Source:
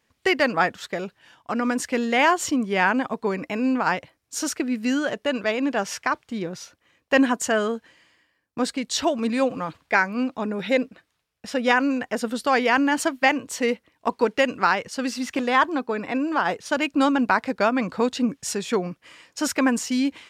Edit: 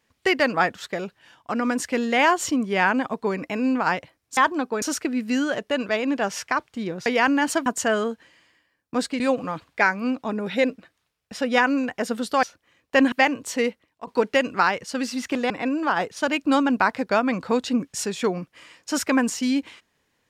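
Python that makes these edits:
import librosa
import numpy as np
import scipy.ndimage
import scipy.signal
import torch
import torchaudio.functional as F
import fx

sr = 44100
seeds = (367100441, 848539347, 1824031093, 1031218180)

y = fx.edit(x, sr, fx.swap(start_s=6.61, length_s=0.69, other_s=12.56, other_length_s=0.6),
    fx.cut(start_s=8.84, length_s=0.49),
    fx.fade_out_to(start_s=13.67, length_s=0.44, floor_db=-15.0),
    fx.move(start_s=15.54, length_s=0.45, to_s=4.37), tone=tone)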